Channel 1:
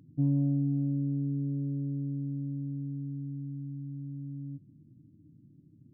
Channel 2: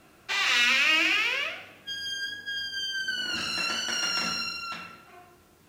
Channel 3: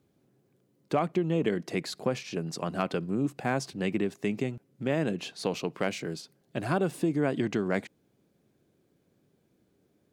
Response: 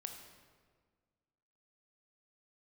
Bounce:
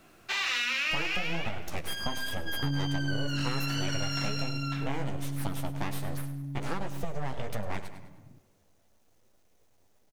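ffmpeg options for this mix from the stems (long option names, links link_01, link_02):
-filter_complex "[0:a]lowshelf=frequency=400:gain=8,adelay=2450,volume=-4.5dB[link_01];[1:a]volume=-1.5dB[link_02];[2:a]equalizer=frequency=6200:width_type=o:width=0.22:gain=13.5,aeval=exprs='abs(val(0))':channel_layout=same,flanger=delay=7.6:depth=8.9:regen=-14:speed=1.3:shape=triangular,volume=2dB,asplit=3[link_03][link_04][link_05];[link_04]volume=-7.5dB[link_06];[link_05]volume=-12dB[link_07];[3:a]atrim=start_sample=2205[link_08];[link_06][link_08]afir=irnorm=-1:irlink=0[link_09];[link_07]aecho=0:1:102|204|306|408|510:1|0.39|0.152|0.0593|0.0231[link_10];[link_01][link_02][link_03][link_09][link_10]amix=inputs=5:normalize=0,acrusher=bits=11:mix=0:aa=0.000001,acompressor=threshold=-27dB:ratio=4"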